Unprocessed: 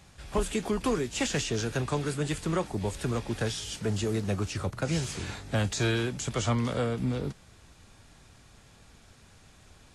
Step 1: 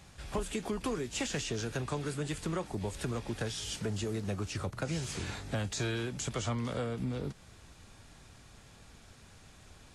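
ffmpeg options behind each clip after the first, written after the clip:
ffmpeg -i in.wav -af "acompressor=threshold=-34dB:ratio=2.5" out.wav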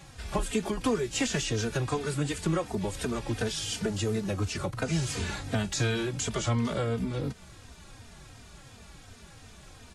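ffmpeg -i in.wav -filter_complex "[0:a]asplit=2[link_01][link_02];[link_02]adelay=3.1,afreqshift=-2.8[link_03];[link_01][link_03]amix=inputs=2:normalize=1,volume=8.5dB" out.wav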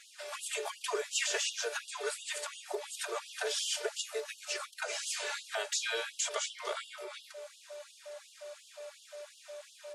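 ffmpeg -i in.wav -af "aeval=exprs='val(0)+0.00794*sin(2*PI*590*n/s)':channel_layout=same,bandreject=frequency=142.2:width_type=h:width=4,bandreject=frequency=284.4:width_type=h:width=4,bandreject=frequency=426.6:width_type=h:width=4,bandreject=frequency=568.8:width_type=h:width=4,bandreject=frequency=711:width_type=h:width=4,bandreject=frequency=853.2:width_type=h:width=4,bandreject=frequency=995.4:width_type=h:width=4,bandreject=frequency=1137.6:width_type=h:width=4,bandreject=frequency=1279.8:width_type=h:width=4,bandreject=frequency=1422:width_type=h:width=4,bandreject=frequency=1564.2:width_type=h:width=4,bandreject=frequency=1706.4:width_type=h:width=4,bandreject=frequency=1848.6:width_type=h:width=4,bandreject=frequency=1990.8:width_type=h:width=4,bandreject=frequency=2133:width_type=h:width=4,bandreject=frequency=2275.2:width_type=h:width=4,bandreject=frequency=2417.4:width_type=h:width=4,bandreject=frequency=2559.6:width_type=h:width=4,bandreject=frequency=2701.8:width_type=h:width=4,bandreject=frequency=2844:width_type=h:width=4,bandreject=frequency=2986.2:width_type=h:width=4,bandreject=frequency=3128.4:width_type=h:width=4,bandreject=frequency=3270.6:width_type=h:width=4,bandreject=frequency=3412.8:width_type=h:width=4,bandreject=frequency=3555:width_type=h:width=4,bandreject=frequency=3697.2:width_type=h:width=4,bandreject=frequency=3839.4:width_type=h:width=4,bandreject=frequency=3981.6:width_type=h:width=4,bandreject=frequency=4123.8:width_type=h:width=4,bandreject=frequency=4266:width_type=h:width=4,bandreject=frequency=4408.2:width_type=h:width=4,bandreject=frequency=4550.4:width_type=h:width=4,bandreject=frequency=4692.6:width_type=h:width=4,bandreject=frequency=4834.8:width_type=h:width=4,bandreject=frequency=4977:width_type=h:width=4,bandreject=frequency=5119.2:width_type=h:width=4,bandreject=frequency=5261.4:width_type=h:width=4,bandreject=frequency=5403.6:width_type=h:width=4,bandreject=frequency=5545.8:width_type=h:width=4,bandreject=frequency=5688:width_type=h:width=4,afftfilt=real='re*gte(b*sr/1024,350*pow(2800/350,0.5+0.5*sin(2*PI*2.8*pts/sr)))':imag='im*gte(b*sr/1024,350*pow(2800/350,0.5+0.5*sin(2*PI*2.8*pts/sr)))':win_size=1024:overlap=0.75" out.wav

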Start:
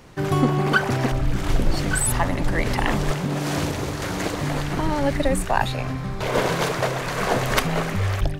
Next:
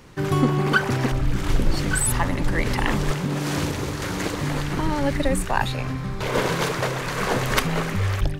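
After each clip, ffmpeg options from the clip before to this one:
ffmpeg -i in.wav -af "equalizer=frequency=680:width_type=o:width=0.42:gain=-6" out.wav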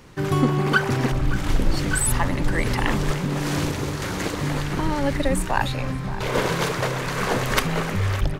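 ffmpeg -i in.wav -filter_complex "[0:a]asplit=2[link_01][link_02];[link_02]adelay=571.4,volume=-13dB,highshelf=frequency=4000:gain=-12.9[link_03];[link_01][link_03]amix=inputs=2:normalize=0" out.wav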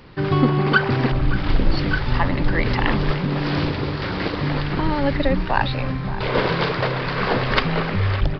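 ffmpeg -i in.wav -af "aresample=11025,aresample=44100,volume=2.5dB" out.wav

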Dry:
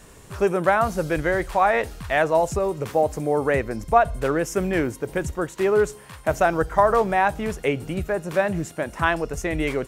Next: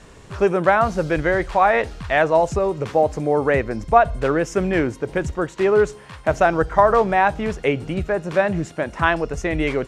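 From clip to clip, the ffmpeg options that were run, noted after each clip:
ffmpeg -i in.wav -af "lowpass=5700,volume=3dB" out.wav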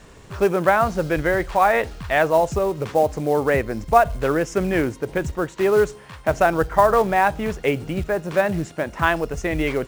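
ffmpeg -i in.wav -af "acrusher=bits=6:mode=log:mix=0:aa=0.000001,volume=-1dB" out.wav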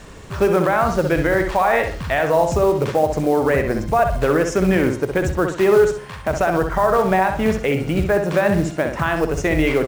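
ffmpeg -i in.wav -filter_complex "[0:a]areverse,acompressor=mode=upward:threshold=-37dB:ratio=2.5,areverse,alimiter=limit=-13.5dB:level=0:latency=1:release=77,asplit=2[link_01][link_02];[link_02]adelay=64,lowpass=frequency=4100:poles=1,volume=-6dB,asplit=2[link_03][link_04];[link_04]adelay=64,lowpass=frequency=4100:poles=1,volume=0.36,asplit=2[link_05][link_06];[link_06]adelay=64,lowpass=frequency=4100:poles=1,volume=0.36,asplit=2[link_07][link_08];[link_08]adelay=64,lowpass=frequency=4100:poles=1,volume=0.36[link_09];[link_01][link_03][link_05][link_07][link_09]amix=inputs=5:normalize=0,volume=5dB" out.wav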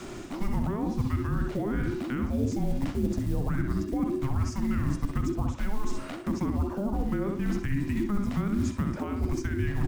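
ffmpeg -i in.wav -filter_complex "[0:a]areverse,acompressor=threshold=-24dB:ratio=6,areverse,afreqshift=-410,acrossover=split=400[link_01][link_02];[link_02]acompressor=threshold=-38dB:ratio=6[link_03];[link_01][link_03]amix=inputs=2:normalize=0" out.wav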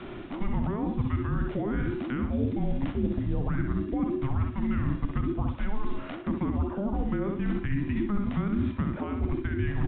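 ffmpeg -i in.wav -af "aresample=8000,aresample=44100" out.wav

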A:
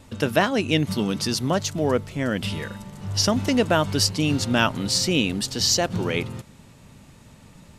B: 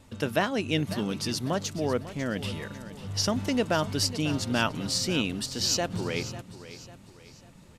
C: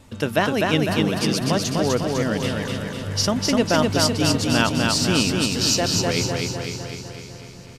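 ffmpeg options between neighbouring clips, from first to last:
ffmpeg -i in.wav -af "aecho=1:1:547|1094|1641|2188:0.188|0.0753|0.0301|0.0121,volume=-6dB" out.wav
ffmpeg -i in.wav -af "aecho=1:1:251|502|753|1004|1255|1506|1757|2008:0.708|0.411|0.238|0.138|0.0801|0.0465|0.027|0.0156,volume=5.5dB" out.wav

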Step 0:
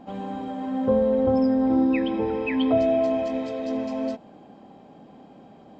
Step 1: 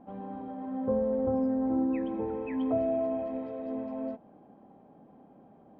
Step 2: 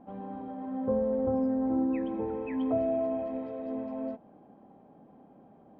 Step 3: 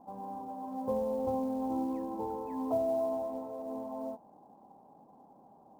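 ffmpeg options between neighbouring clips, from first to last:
ffmpeg -i in.wav -af "lowpass=1400,volume=-7.5dB" out.wav
ffmpeg -i in.wav -af anull out.wav
ffmpeg -i in.wav -af "lowpass=frequency=930:width_type=q:width=4.9,acrusher=bits=8:mode=log:mix=0:aa=0.000001,volume=-7dB" out.wav

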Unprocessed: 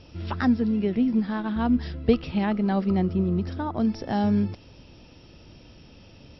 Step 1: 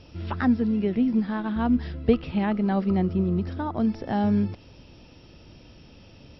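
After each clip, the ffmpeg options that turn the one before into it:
ffmpeg -i in.wav -filter_complex "[0:a]acrossover=split=3700[link_01][link_02];[link_02]acompressor=threshold=-58dB:ratio=4:attack=1:release=60[link_03];[link_01][link_03]amix=inputs=2:normalize=0" out.wav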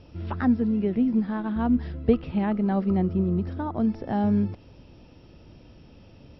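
ffmpeg -i in.wav -af "highshelf=frequency=2000:gain=-8.5" out.wav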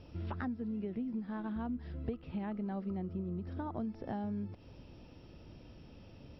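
ffmpeg -i in.wav -af "acompressor=threshold=-32dB:ratio=6,volume=-4dB" out.wav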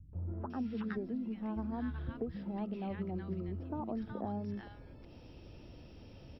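ffmpeg -i in.wav -filter_complex "[0:a]acrossover=split=180|1200[link_01][link_02][link_03];[link_02]adelay=130[link_04];[link_03]adelay=500[link_05];[link_01][link_04][link_05]amix=inputs=3:normalize=0,volume=2dB" out.wav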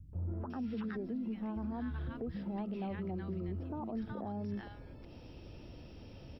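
ffmpeg -i in.wav -af "alimiter=level_in=9.5dB:limit=-24dB:level=0:latency=1:release=33,volume=-9.5dB,volume=2dB" out.wav

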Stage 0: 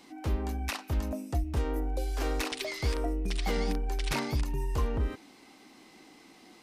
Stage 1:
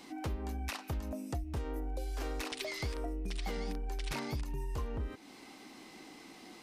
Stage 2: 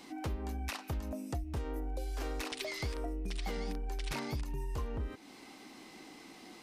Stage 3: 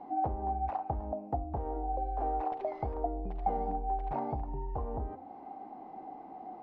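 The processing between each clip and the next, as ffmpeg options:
ffmpeg -i in.wav -af "acompressor=threshold=-40dB:ratio=3,volume=2.5dB" out.wav
ffmpeg -i in.wav -af anull out.wav
ffmpeg -i in.wav -af "lowpass=frequency=770:width_type=q:width=8.1,bandreject=frequency=87.05:width_type=h:width=4,bandreject=frequency=174.1:width_type=h:width=4,bandreject=frequency=261.15:width_type=h:width=4,bandreject=frequency=348.2:width_type=h:width=4,bandreject=frequency=435.25:width_type=h:width=4,bandreject=frequency=522.3:width_type=h:width=4,bandreject=frequency=609.35:width_type=h:width=4,bandreject=frequency=696.4:width_type=h:width=4,bandreject=frequency=783.45:width_type=h:width=4,bandreject=frequency=870.5:width_type=h:width=4,bandreject=frequency=957.55:width_type=h:width=4,bandreject=frequency=1044.6:width_type=h:width=4,bandreject=frequency=1131.65:width_type=h:width=4,bandreject=frequency=1218.7:width_type=h:width=4,bandreject=frequency=1305.75:width_type=h:width=4,bandreject=frequency=1392.8:width_type=h:width=4,bandreject=frequency=1479.85:width_type=h:width=4" out.wav

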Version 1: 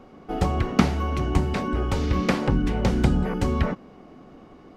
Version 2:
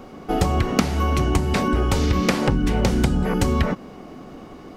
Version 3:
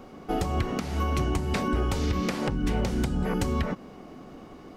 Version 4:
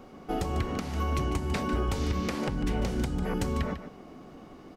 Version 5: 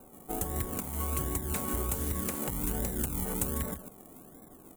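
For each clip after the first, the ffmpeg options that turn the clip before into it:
ffmpeg -i in.wav -af "highshelf=frequency=5900:gain=10.5,acompressor=threshold=-23dB:ratio=6,volume=7.5dB" out.wav
ffmpeg -i in.wav -af "alimiter=limit=-10.5dB:level=0:latency=1:release=179,volume=-5.5dB" out.wav
ffmpeg -i in.wav -af "aecho=1:1:148:0.282,volume=-3dB" out.wav
ffmpeg -i in.wav -filter_complex "[0:a]acrossover=split=260|1300[link_01][link_02][link_03];[link_01]acrusher=samples=33:mix=1:aa=0.000001:lfo=1:lforange=19.8:lforate=1.3[link_04];[link_03]aeval=exprs='sgn(val(0))*max(abs(val(0))-0.00398,0)':channel_layout=same[link_05];[link_04][link_02][link_05]amix=inputs=3:normalize=0,aexciter=amount=13:drive=3.7:freq=7400,volume=-5dB" out.wav

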